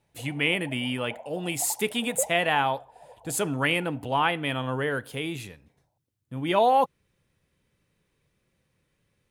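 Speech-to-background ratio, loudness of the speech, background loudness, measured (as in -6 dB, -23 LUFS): 16.5 dB, -26.5 LUFS, -43.0 LUFS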